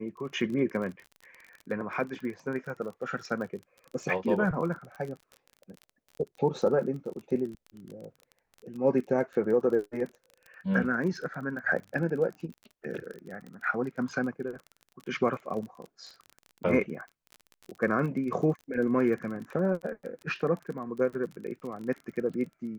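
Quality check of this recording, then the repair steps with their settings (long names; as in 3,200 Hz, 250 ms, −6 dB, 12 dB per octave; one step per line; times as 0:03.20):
surface crackle 31 per second −37 dBFS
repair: click removal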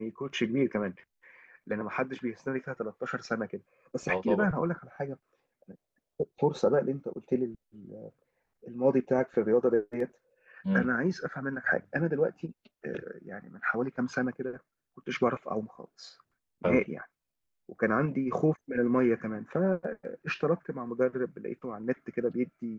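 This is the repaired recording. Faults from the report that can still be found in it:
none of them is left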